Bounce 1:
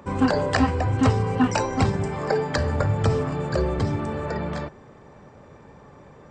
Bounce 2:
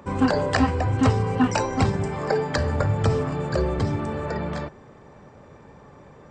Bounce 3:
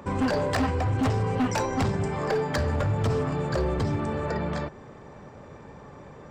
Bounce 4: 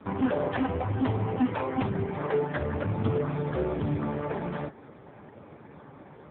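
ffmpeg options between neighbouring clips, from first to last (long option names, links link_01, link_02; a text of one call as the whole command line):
ffmpeg -i in.wav -af anull out.wav
ffmpeg -i in.wav -filter_complex "[0:a]asplit=2[link_01][link_02];[link_02]acompressor=threshold=-33dB:ratio=4,volume=-0.5dB[link_03];[link_01][link_03]amix=inputs=2:normalize=0,asoftclip=type=hard:threshold=-17dB,volume=-3.5dB" out.wav
ffmpeg -i in.wav -ar 8000 -c:a libopencore_amrnb -b:a 4750 out.amr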